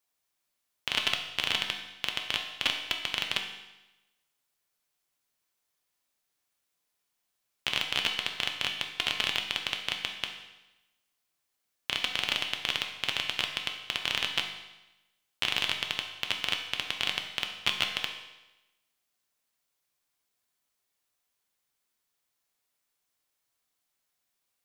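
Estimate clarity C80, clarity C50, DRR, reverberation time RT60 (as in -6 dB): 8.5 dB, 6.5 dB, 2.5 dB, 1.0 s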